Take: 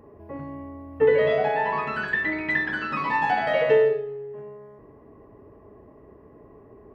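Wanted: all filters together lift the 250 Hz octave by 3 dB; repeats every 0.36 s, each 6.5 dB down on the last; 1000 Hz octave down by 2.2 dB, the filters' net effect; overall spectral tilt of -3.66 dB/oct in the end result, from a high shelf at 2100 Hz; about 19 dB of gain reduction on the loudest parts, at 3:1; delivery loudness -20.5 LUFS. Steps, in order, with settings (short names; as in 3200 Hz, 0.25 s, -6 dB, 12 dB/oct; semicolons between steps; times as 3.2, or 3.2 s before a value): bell 250 Hz +4 dB; bell 1000 Hz -4 dB; high shelf 2100 Hz +5 dB; compressor 3:1, threshold -41 dBFS; feedback echo 0.36 s, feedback 47%, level -6.5 dB; gain +19 dB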